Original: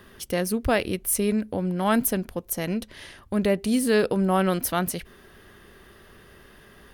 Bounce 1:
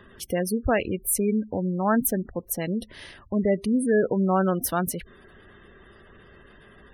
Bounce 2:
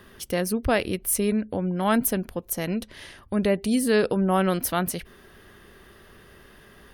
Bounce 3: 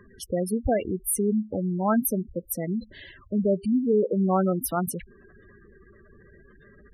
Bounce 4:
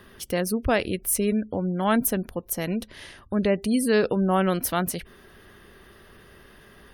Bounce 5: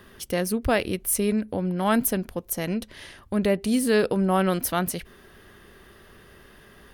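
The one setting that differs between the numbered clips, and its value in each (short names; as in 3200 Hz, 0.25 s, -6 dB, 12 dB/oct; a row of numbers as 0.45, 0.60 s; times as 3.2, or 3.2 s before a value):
spectral gate, under each frame's peak: -20, -45, -10, -35, -60 dB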